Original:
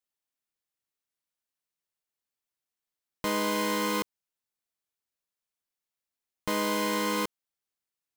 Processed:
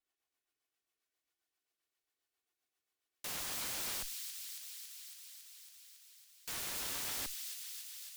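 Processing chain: minimum comb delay 2.7 ms; tone controls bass -7 dB, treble -6 dB; added harmonics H 6 -22 dB, 7 -32 dB, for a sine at -18.5 dBFS; rotary speaker horn 7.5 Hz; wrapped overs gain 45.5 dB; on a send: thin delay 0.277 s, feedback 76%, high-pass 3100 Hz, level -5 dB; on the sum: gain +9.5 dB

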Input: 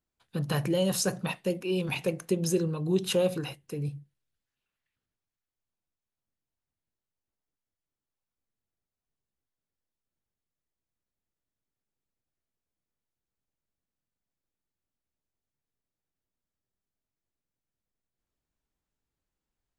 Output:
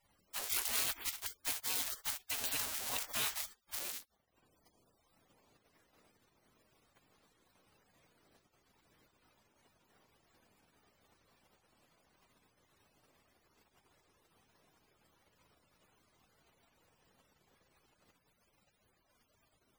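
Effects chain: switching spikes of -26.5 dBFS; spectral gate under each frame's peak -30 dB weak; gain +6 dB

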